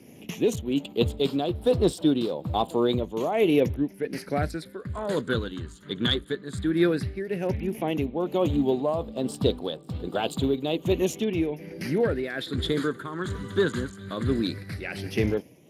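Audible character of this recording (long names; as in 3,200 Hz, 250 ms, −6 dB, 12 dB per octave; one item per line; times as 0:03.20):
tremolo triangle 1.2 Hz, depth 65%
phaser sweep stages 8, 0.13 Hz, lowest notch 730–2,000 Hz
Speex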